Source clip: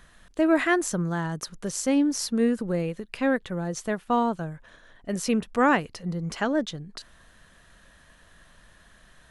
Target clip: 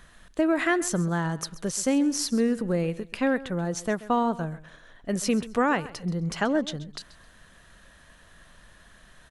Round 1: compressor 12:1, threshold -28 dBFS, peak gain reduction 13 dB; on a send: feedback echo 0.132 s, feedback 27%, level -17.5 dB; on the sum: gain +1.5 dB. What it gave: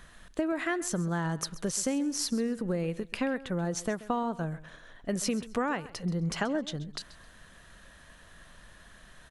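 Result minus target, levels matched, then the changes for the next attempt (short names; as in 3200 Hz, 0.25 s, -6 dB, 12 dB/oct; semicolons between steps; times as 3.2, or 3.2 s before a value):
compressor: peak gain reduction +7.5 dB
change: compressor 12:1, threshold -20 dBFS, peak gain reduction 5.5 dB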